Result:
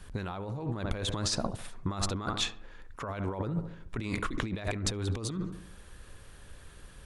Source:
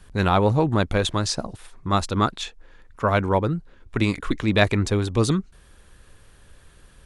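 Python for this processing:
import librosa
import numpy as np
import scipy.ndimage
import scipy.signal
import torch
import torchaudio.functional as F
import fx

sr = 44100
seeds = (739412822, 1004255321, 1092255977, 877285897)

y = fx.echo_filtered(x, sr, ms=71, feedback_pct=49, hz=1900.0, wet_db=-15.0)
y = fx.over_compress(y, sr, threshold_db=-28.0, ratio=-1.0)
y = F.gain(torch.from_numpy(y), -5.5).numpy()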